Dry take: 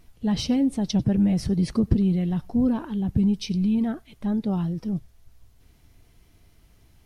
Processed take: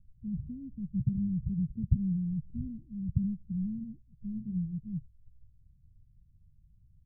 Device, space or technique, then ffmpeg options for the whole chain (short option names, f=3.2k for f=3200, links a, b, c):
the neighbour's flat through the wall: -filter_complex "[0:a]lowpass=f=160:w=0.5412,lowpass=f=160:w=1.3066,equalizer=f=150:t=o:w=0.77:g=3,asplit=3[a][b][c];[a]afade=t=out:st=4.35:d=0.02[d];[b]asplit=2[e][f];[f]adelay=33,volume=-5.5dB[g];[e][g]amix=inputs=2:normalize=0,afade=t=in:st=4.35:d=0.02,afade=t=out:st=4.78:d=0.02[h];[c]afade=t=in:st=4.78:d=0.02[i];[d][h][i]amix=inputs=3:normalize=0,volume=-4.5dB"